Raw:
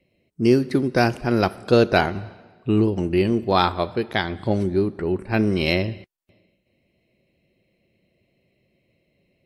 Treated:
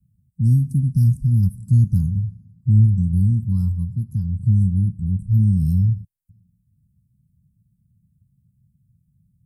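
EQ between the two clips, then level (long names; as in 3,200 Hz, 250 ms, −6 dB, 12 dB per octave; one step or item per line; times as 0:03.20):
inverse Chebyshev band-stop filter 390–3,800 Hz, stop band 50 dB
parametric band 110 Hz +9.5 dB 2.8 octaves
parametric band 1,000 Hz +13 dB 0.45 octaves
+3.0 dB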